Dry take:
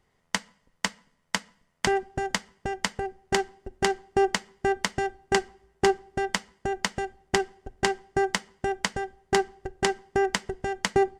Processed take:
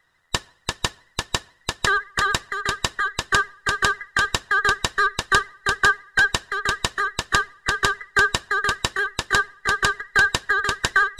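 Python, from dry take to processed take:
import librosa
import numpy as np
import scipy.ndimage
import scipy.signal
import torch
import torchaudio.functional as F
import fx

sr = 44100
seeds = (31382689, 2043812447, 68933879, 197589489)

y = fx.band_invert(x, sr, width_hz=2000)
y = y + 10.0 ** (-3.0 / 20.0) * np.pad(y, (int(344 * sr / 1000.0), 0))[:len(y)]
y = fx.vibrato(y, sr, rate_hz=14.0, depth_cents=65.0)
y = y * librosa.db_to_amplitude(4.0)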